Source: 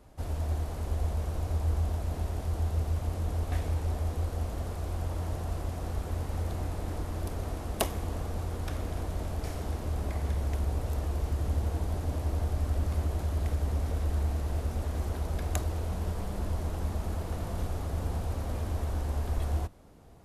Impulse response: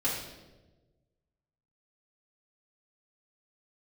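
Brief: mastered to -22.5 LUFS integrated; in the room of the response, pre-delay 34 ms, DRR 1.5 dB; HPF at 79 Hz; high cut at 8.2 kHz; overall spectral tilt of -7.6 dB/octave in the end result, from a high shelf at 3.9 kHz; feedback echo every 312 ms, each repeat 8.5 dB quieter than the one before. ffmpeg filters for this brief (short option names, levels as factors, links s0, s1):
-filter_complex "[0:a]highpass=79,lowpass=8200,highshelf=f=3900:g=-7,aecho=1:1:312|624|936|1248:0.376|0.143|0.0543|0.0206,asplit=2[s0][s1];[1:a]atrim=start_sample=2205,adelay=34[s2];[s1][s2]afir=irnorm=-1:irlink=0,volume=0.335[s3];[s0][s3]amix=inputs=2:normalize=0,volume=3.16"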